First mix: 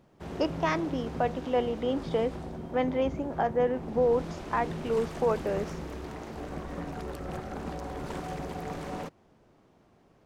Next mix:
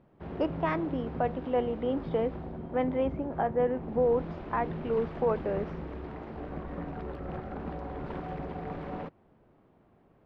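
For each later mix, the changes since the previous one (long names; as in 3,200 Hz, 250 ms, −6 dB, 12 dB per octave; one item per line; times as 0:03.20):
master: add high-frequency loss of the air 400 metres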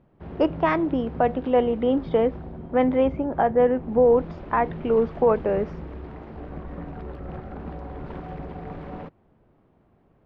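speech +8.0 dB
master: add low-shelf EQ 130 Hz +6 dB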